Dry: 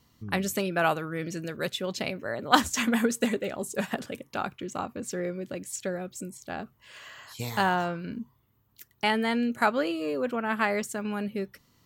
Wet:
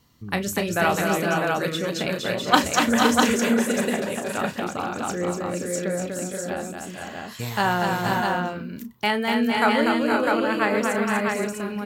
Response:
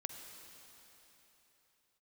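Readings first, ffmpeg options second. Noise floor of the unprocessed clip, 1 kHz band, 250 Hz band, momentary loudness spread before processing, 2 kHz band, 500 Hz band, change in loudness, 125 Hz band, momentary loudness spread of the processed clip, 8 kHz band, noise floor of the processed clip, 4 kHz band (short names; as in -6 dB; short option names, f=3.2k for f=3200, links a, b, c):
-68 dBFS, +6.5 dB, +6.5 dB, 13 LU, +6.5 dB, +6.5 dB, +6.0 dB, +6.5 dB, 10 LU, +6.5 dB, -37 dBFS, +6.5 dB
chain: -filter_complex "[0:a]asplit=2[a][b];[b]adelay=34,volume=-11dB[c];[a][c]amix=inputs=2:normalize=0,asplit=2[d][e];[e]aecho=0:1:243|459|480|516|652:0.596|0.299|0.501|0.398|0.668[f];[d][f]amix=inputs=2:normalize=0,volume=2.5dB"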